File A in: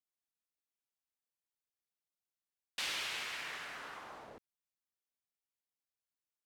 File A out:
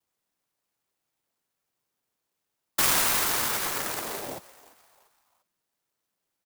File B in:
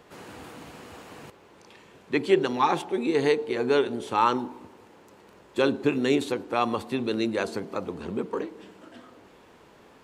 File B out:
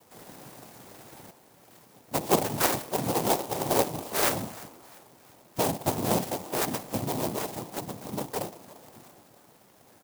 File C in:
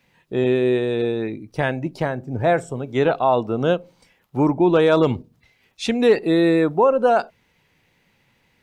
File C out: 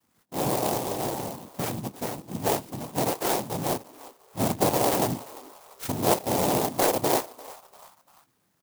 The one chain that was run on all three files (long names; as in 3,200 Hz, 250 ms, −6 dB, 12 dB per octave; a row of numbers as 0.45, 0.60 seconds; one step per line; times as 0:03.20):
cochlear-implant simulation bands 4
echo with shifted repeats 345 ms, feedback 42%, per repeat +140 Hz, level −20 dB
converter with an unsteady clock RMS 0.11 ms
normalise the peak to −9 dBFS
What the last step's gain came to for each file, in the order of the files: +16.5, −3.0, −7.5 decibels